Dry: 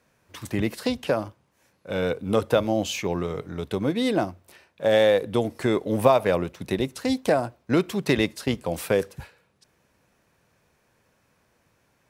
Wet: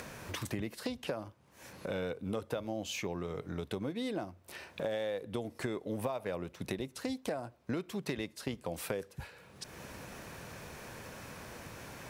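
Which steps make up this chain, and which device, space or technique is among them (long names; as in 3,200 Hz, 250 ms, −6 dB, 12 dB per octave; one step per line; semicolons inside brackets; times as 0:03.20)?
upward and downward compression (upward compression, threshold −33 dBFS; downward compressor 5 to 1, threshold −37 dBFS, peak gain reduction 22 dB)
level +1.5 dB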